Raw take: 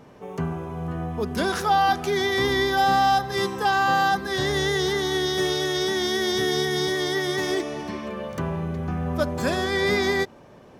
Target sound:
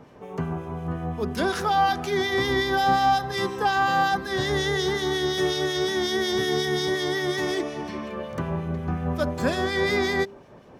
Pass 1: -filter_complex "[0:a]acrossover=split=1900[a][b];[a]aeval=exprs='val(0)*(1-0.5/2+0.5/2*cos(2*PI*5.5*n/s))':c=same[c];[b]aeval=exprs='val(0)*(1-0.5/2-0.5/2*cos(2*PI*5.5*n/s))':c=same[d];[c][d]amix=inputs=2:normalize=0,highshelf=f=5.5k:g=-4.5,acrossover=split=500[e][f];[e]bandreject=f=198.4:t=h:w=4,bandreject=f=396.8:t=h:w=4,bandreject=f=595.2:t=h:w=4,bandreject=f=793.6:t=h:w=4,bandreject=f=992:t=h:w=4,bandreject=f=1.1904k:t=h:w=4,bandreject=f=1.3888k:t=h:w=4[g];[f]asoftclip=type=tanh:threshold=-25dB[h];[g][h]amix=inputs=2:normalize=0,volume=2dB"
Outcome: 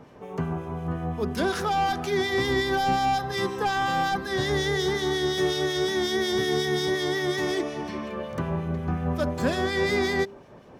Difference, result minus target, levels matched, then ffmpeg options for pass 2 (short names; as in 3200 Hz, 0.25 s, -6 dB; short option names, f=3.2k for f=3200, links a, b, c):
soft clip: distortion +15 dB
-filter_complex "[0:a]acrossover=split=1900[a][b];[a]aeval=exprs='val(0)*(1-0.5/2+0.5/2*cos(2*PI*5.5*n/s))':c=same[c];[b]aeval=exprs='val(0)*(1-0.5/2-0.5/2*cos(2*PI*5.5*n/s))':c=same[d];[c][d]amix=inputs=2:normalize=0,highshelf=f=5.5k:g=-4.5,acrossover=split=500[e][f];[e]bandreject=f=198.4:t=h:w=4,bandreject=f=396.8:t=h:w=4,bandreject=f=595.2:t=h:w=4,bandreject=f=793.6:t=h:w=4,bandreject=f=992:t=h:w=4,bandreject=f=1.1904k:t=h:w=4,bandreject=f=1.3888k:t=h:w=4[g];[f]asoftclip=type=tanh:threshold=-14dB[h];[g][h]amix=inputs=2:normalize=0,volume=2dB"